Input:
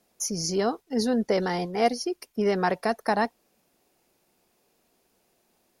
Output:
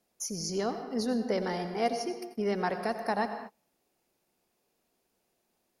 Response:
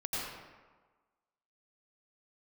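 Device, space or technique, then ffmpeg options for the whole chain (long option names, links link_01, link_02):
keyed gated reverb: -filter_complex "[0:a]asplit=3[link_01][link_02][link_03];[1:a]atrim=start_sample=2205[link_04];[link_02][link_04]afir=irnorm=-1:irlink=0[link_05];[link_03]apad=whole_len=255822[link_06];[link_05][link_06]sidechaingate=range=-33dB:threshold=-52dB:ratio=16:detection=peak,volume=-10dB[link_07];[link_01][link_07]amix=inputs=2:normalize=0,volume=-8dB"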